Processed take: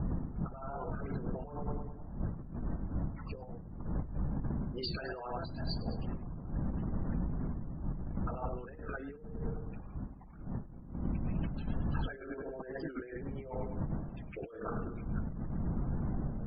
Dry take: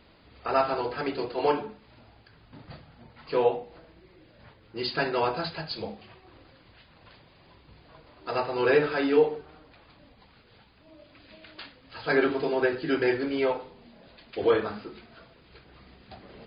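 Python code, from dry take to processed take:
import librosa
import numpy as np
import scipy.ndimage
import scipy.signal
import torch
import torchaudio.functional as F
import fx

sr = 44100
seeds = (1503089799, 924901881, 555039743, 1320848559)

p1 = fx.envelope_sharpen(x, sr, power=2.0)
p2 = fx.dmg_wind(p1, sr, seeds[0], corner_hz=180.0, level_db=-26.0)
p3 = p2 + fx.echo_feedback(p2, sr, ms=103, feedback_pct=52, wet_db=-12, dry=0)
p4 = fx.env_lowpass(p3, sr, base_hz=1700.0, full_db=-14.5)
p5 = fx.peak_eq(p4, sr, hz=97.0, db=-6.5, octaves=0.78)
p6 = fx.over_compress(p5, sr, threshold_db=-32.0, ratio=-1.0)
p7 = fx.peak_eq(p6, sr, hz=430.0, db=-9.0, octaves=1.2)
p8 = fx.spec_topn(p7, sr, count=64)
p9 = fx.record_warp(p8, sr, rpm=45.0, depth_cents=100.0)
y = p9 * 10.0 ** (-4.0 / 20.0)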